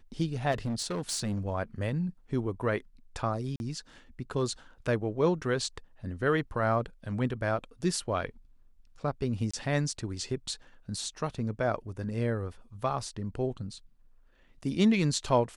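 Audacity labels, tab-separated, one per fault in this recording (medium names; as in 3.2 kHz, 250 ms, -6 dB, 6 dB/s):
0.510000	1.480000	clipped -28 dBFS
3.560000	3.600000	dropout 41 ms
9.510000	9.540000	dropout 25 ms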